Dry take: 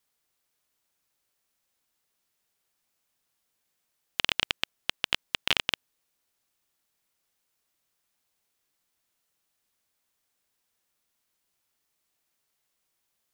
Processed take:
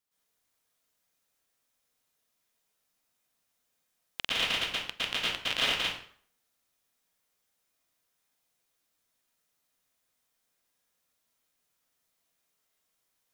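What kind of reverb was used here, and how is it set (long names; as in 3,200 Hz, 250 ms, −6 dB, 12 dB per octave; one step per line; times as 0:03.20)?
dense smooth reverb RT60 0.55 s, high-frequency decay 0.8×, pre-delay 100 ms, DRR −9.5 dB
level −9.5 dB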